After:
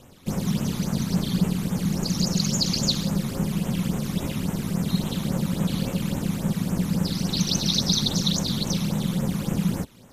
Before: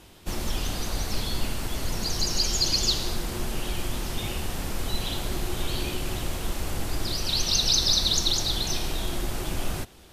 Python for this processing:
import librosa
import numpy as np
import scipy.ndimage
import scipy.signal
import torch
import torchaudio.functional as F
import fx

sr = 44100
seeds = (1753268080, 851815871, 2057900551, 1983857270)

y = fx.phaser_stages(x, sr, stages=12, low_hz=470.0, high_hz=4600.0, hz=3.6, feedback_pct=25)
y = y * np.sin(2.0 * np.pi * 180.0 * np.arange(len(y)) / sr)
y = y * librosa.db_to_amplitude(4.0)